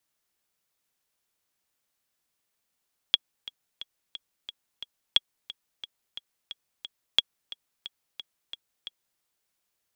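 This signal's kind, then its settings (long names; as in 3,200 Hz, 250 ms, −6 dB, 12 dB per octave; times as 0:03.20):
click track 178 BPM, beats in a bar 6, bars 3, 3,330 Hz, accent 18.5 dB −5.5 dBFS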